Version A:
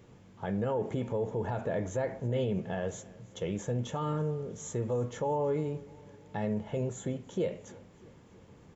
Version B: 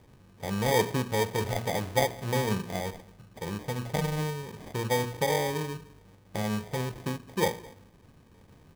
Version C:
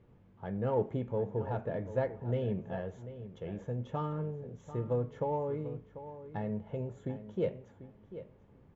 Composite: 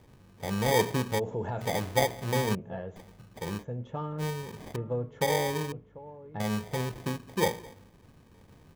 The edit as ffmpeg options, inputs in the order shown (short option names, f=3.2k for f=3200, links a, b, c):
-filter_complex "[2:a]asplit=4[a][b][c][d];[1:a]asplit=6[e][f][g][h][i][j];[e]atrim=end=1.2[k];[0:a]atrim=start=1.18:end=1.62[l];[f]atrim=start=1.6:end=2.552[m];[a]atrim=start=2.548:end=2.962[n];[g]atrim=start=2.958:end=3.65[o];[b]atrim=start=3.59:end=4.24[p];[h]atrim=start=4.18:end=4.762[q];[c]atrim=start=4.758:end=5.212[r];[i]atrim=start=5.208:end=5.722[s];[d]atrim=start=5.718:end=6.402[t];[j]atrim=start=6.398[u];[k][l]acrossfade=d=0.02:c1=tri:c2=tri[v];[v][m]acrossfade=d=0.02:c1=tri:c2=tri[w];[w][n]acrossfade=d=0.004:c1=hsin:c2=hsin[x];[x][o]acrossfade=d=0.004:c1=hsin:c2=hsin[y];[y][p]acrossfade=d=0.06:c1=tri:c2=tri[z];[z][q]acrossfade=d=0.06:c1=tri:c2=tri[aa];[aa][r]acrossfade=d=0.004:c1=hsin:c2=hsin[ab];[ab][s]acrossfade=d=0.004:c1=hsin:c2=hsin[ac];[ac][t]acrossfade=d=0.004:c1=hsin:c2=hsin[ad];[ad][u]acrossfade=d=0.004:c1=hsin:c2=hsin"